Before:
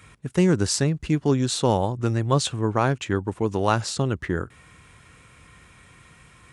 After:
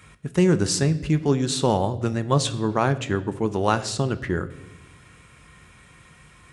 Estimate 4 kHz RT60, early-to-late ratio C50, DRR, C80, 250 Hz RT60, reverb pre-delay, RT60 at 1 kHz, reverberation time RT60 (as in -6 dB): 0.80 s, 16.0 dB, 10.5 dB, 18.5 dB, 1.7 s, 5 ms, 0.80 s, 1.0 s